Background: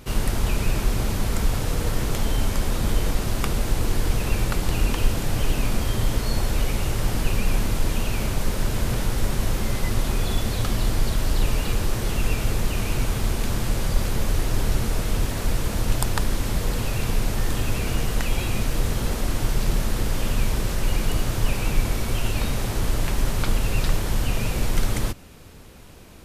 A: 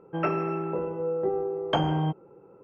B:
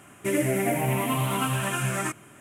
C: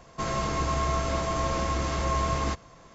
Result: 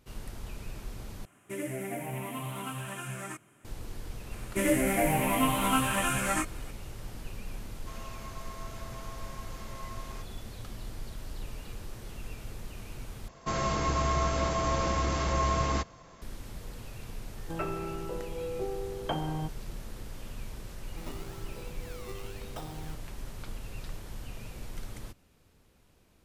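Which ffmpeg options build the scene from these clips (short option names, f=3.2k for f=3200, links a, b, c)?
-filter_complex "[2:a]asplit=2[a][b];[3:a]asplit=2[c][d];[1:a]asplit=2[e][f];[0:a]volume=-18.5dB[g];[b]asplit=2[h][i];[i]adelay=19,volume=-3dB[j];[h][j]amix=inputs=2:normalize=0[k];[c]highpass=600[l];[f]acrusher=samples=19:mix=1:aa=0.000001:lfo=1:lforange=19:lforate=0.97[m];[g]asplit=3[n][o][p];[n]atrim=end=1.254[q];[a]atrim=end=2.4,asetpts=PTS-STARTPTS,volume=-11.5dB[r];[o]atrim=start=3.646:end=13.284[s];[d]atrim=end=2.94,asetpts=PTS-STARTPTS,volume=-1dB[t];[p]atrim=start=16.216[u];[k]atrim=end=2.4,asetpts=PTS-STARTPTS,volume=-2dB,afade=t=in:d=0.004:c=hsin,afade=t=out:st=2.396:d=0.004:c=hsin,adelay=4310[v];[l]atrim=end=2.94,asetpts=PTS-STARTPTS,volume=-16.5dB,afade=t=in:d=0.004:c=hsin,afade=t=out:st=2.936:d=0.004:c=hsin,adelay=7680[w];[e]atrim=end=2.63,asetpts=PTS-STARTPTS,volume=-8dB,afade=t=in:d=0.004:c=hsin,afade=t=out:st=2.626:d=0.004:c=hsin,adelay=17360[x];[m]atrim=end=2.63,asetpts=PTS-STARTPTS,volume=-18dB,afade=t=in:d=0.004:c=hsin,afade=t=out:st=2.626:d=0.004:c=hsin,adelay=20830[y];[q][r]acrossfade=d=0.004:c1=hsin:c2=hsin[z];[z][s]acrossfade=d=0.004:c1=hsin:c2=hsin[aa];[aa][t]acrossfade=d=0.004:c1=hsin:c2=hsin[ab];[ab][u]acrossfade=d=0.004:c1=hsin:c2=hsin[ac];[ac][v][w][x][y]amix=inputs=5:normalize=0"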